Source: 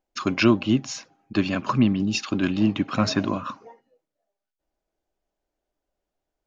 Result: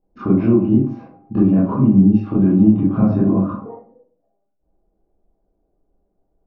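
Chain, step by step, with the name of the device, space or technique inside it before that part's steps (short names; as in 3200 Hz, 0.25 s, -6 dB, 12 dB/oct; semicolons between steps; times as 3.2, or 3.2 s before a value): 0.82–1.41 treble ducked by the level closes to 1100 Hz, closed at -24 dBFS; television next door (compressor 3:1, threshold -29 dBFS, peak gain reduction 12.5 dB; LPF 420 Hz 12 dB/oct; reverb RT60 0.45 s, pre-delay 19 ms, DRR -10 dB); gain +8.5 dB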